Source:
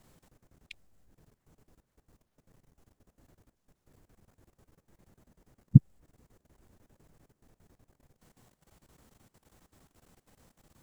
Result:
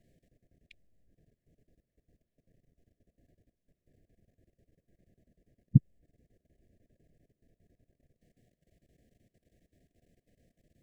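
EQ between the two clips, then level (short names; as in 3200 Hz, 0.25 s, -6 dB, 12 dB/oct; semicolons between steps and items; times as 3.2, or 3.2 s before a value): brick-wall FIR band-stop 730–1600 Hz; high shelf 2700 Hz -11.5 dB; -4.5 dB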